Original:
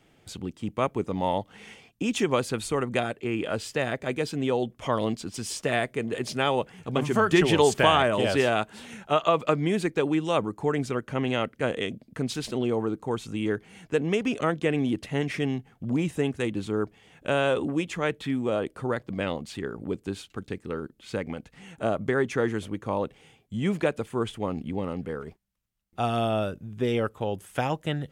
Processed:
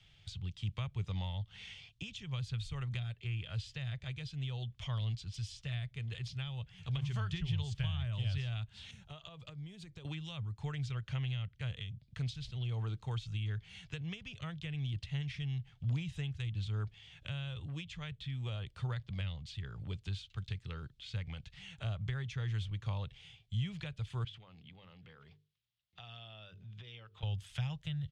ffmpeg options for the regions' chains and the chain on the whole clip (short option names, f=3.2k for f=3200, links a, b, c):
-filter_complex "[0:a]asettb=1/sr,asplit=3[a][b][c];[a]atrim=end=8.914[d];[b]atrim=start=8.91:end=10.05,asetpts=PTS-STARTPTS,afade=t=in:d=0.004:c=qsin,afade=t=out:st=1.136:d=0.004:c=qsin,equalizer=f=2.3k:w=0.35:g=-13,acompressor=threshold=-36dB:ratio=6:attack=3.2:release=140:knee=1:detection=peak[e];[c]atrim=start=10.046[f];[d][e]acrossfade=d=0.004:c1=hsin:c2=qsin[g];[g][f]acrossfade=d=0.004:c1=qsin:c2=hsin,asettb=1/sr,asplit=3[h][i][j];[h]atrim=end=24.244[k];[i]atrim=start=24.24:end=27.23,asetpts=PTS-STARTPTS,afade=t=in:d=0.004:c=qsin,afade=t=out:st=2.986:d=0.004:c=qsin,highpass=160,lowpass=4.9k,bandreject=f=50:t=h:w=6,bandreject=f=100:t=h:w=6,bandreject=f=150:t=h:w=6,bandreject=f=200:t=h:w=6,bandreject=f=250:t=h:w=6,bandreject=f=300:t=h:w=6,bandreject=f=350:t=h:w=6,bandreject=f=400:t=h:w=6,bandreject=f=450:t=h:w=6,acompressor=threshold=-43dB:ratio=4:attack=3.2:release=140:knee=1:detection=peak[l];[j]atrim=start=27.226[m];[k][l]acrossfade=d=0.004:c1=hsin:c2=qsin[n];[n][m]acrossfade=d=0.004:c1=qsin:c2=hsin,firequalizer=gain_entry='entry(110,0);entry(250,-27);entry(660,-18);entry(3400,8);entry(10000,-4)':delay=0.05:min_phase=1,acrossover=split=170[o][p];[p]acompressor=threshold=-45dB:ratio=6[q];[o][q]amix=inputs=2:normalize=0,aemphasis=mode=reproduction:type=75fm,volume=3dB"